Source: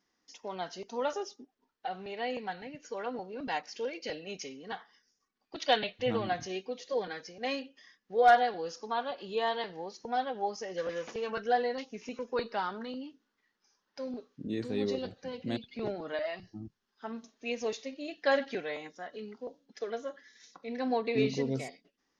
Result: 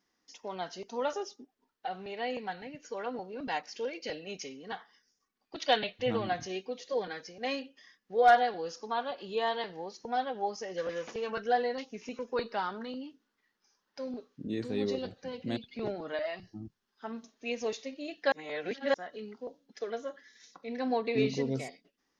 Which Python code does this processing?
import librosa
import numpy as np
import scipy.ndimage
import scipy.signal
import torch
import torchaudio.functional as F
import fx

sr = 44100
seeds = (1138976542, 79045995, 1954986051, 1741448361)

y = fx.edit(x, sr, fx.reverse_span(start_s=18.32, length_s=0.62), tone=tone)